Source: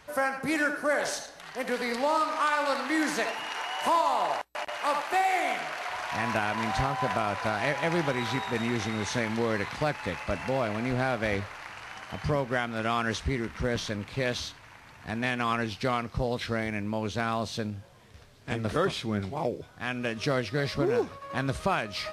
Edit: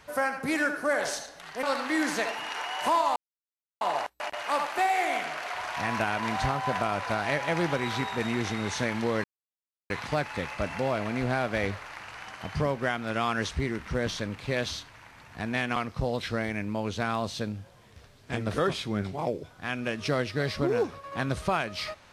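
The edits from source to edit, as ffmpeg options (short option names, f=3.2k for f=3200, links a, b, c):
-filter_complex "[0:a]asplit=5[a][b][c][d][e];[a]atrim=end=1.632[f];[b]atrim=start=2.628:end=4.16,asetpts=PTS-STARTPTS,afade=t=out:st=1.528:d=0.004:c=hsin,apad=pad_dur=0.65[g];[c]atrim=start=4.16:end=9.59,asetpts=PTS-STARTPTS,afade=t=in:d=0.004:c=hsin,afade=t=out:st=5.426:d=0.004:c=hsin,apad=pad_dur=0.66[h];[d]atrim=start=9.59:end=15.452,asetpts=PTS-STARTPTS,afade=t=in:d=0.004:c=hsin[i];[e]atrim=start=15.938[j];[g][h][i]concat=n=3:v=0:a=1[k];[f][k]acrossfade=d=0.004:c1=hsin:c2=hsin[l];[l][j]acrossfade=d=0.004:c1=hsin:c2=hsin"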